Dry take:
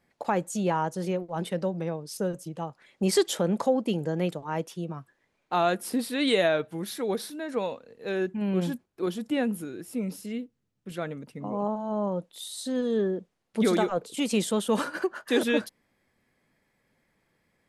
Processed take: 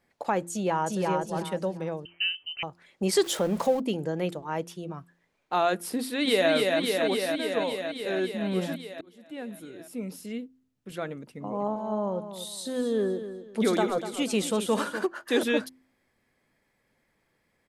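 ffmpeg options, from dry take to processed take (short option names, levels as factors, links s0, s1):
-filter_complex "[0:a]asplit=2[s0][s1];[s1]afade=t=in:st=0.51:d=0.01,afade=t=out:st=1.07:d=0.01,aecho=0:1:350|700|1050|1400:0.794328|0.198582|0.0496455|0.0124114[s2];[s0][s2]amix=inputs=2:normalize=0,asettb=1/sr,asplit=3[s3][s4][s5];[s3]atrim=end=2.054[s6];[s4]atrim=start=2.05:end=2.63,asetpts=PTS-STARTPTS,afade=t=in:d=0.004:c=qsin,afade=t=out:st=0.576:d=0.004:c=qsin,lowpass=f=2700:t=q:w=0.5098,lowpass=f=2700:t=q:w=0.6013,lowpass=f=2700:t=q:w=0.9,lowpass=f=2700:t=q:w=2.563,afreqshift=-3200[s7];[s5]atrim=start=2.626[s8];[s6][s7]acrossfade=d=0.004:c1=hsin:c2=qsin[s9];[s9][s8]acrossfade=d=0.004:c1=qsin:c2=hsin,asettb=1/sr,asplit=3[s10][s11][s12];[s10]atrim=end=3.234[s13];[s11]atrim=start=3.23:end=3.8,asetpts=PTS-STARTPTS,afade=t=in:d=0.004:c=qsin,afade=t=out:st=0.566:d=0.004:c=qsin,aeval=exprs='val(0)+0.5*0.0141*sgn(val(0))':c=same[s14];[s12]atrim=start=3.796[s15];[s13][s14]acrossfade=d=0.004:c1=hsin:c2=qsin[s16];[s16][s15]acrossfade=d=0.004:c1=qsin:c2=hsin,asplit=2[s17][s18];[s18]afade=t=in:st=5.97:d=0.01,afade=t=out:st=6.51:d=0.01,aecho=0:1:280|560|840|1120|1400|1680|1960|2240|2520|2800|3080|3360:0.749894|0.599915|0.479932|0.383946|0.307157|0.245725|0.19658|0.157264|0.125811|0.100649|0.0805193|0.0644154[s19];[s17][s19]amix=inputs=2:normalize=0,asplit=3[s20][s21][s22];[s20]afade=t=out:st=11.55:d=0.02[s23];[s21]aecho=1:1:246|492|738:0.282|0.0817|0.0237,afade=t=in:st=11.55:d=0.02,afade=t=out:st=15.05:d=0.02[s24];[s22]afade=t=in:st=15.05:d=0.02[s25];[s23][s24][s25]amix=inputs=3:normalize=0,asplit=2[s26][s27];[s26]atrim=end=9.01,asetpts=PTS-STARTPTS,afade=t=out:st=9.006:d=0.004:c=hsin[s28];[s27]atrim=start=9.01,asetpts=PTS-STARTPTS,afade=t=in:d=1.31[s29];[s28][s29]concat=n=2:v=0:a=1,equalizer=f=170:w=1.5:g=-3,bandreject=f=86.18:t=h:w=4,bandreject=f=172.36:t=h:w=4,bandreject=f=258.54:t=h:w=4,bandreject=f=344.72:t=h:w=4"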